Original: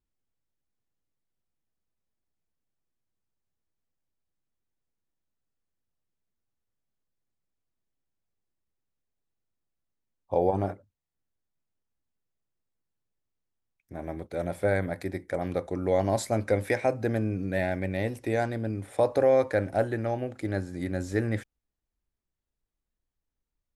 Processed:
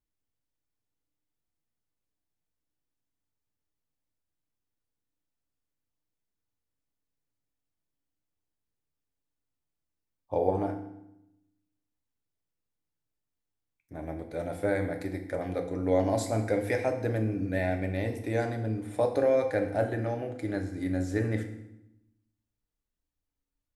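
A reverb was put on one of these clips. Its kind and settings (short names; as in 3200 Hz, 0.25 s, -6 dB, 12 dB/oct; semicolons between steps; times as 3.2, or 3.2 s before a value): FDN reverb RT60 0.85 s, low-frequency decay 1.4×, high-frequency decay 0.85×, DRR 4 dB; gain -3.5 dB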